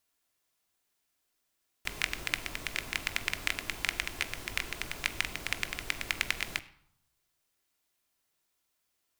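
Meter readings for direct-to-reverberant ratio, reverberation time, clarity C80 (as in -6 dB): 10.0 dB, 0.75 s, 19.5 dB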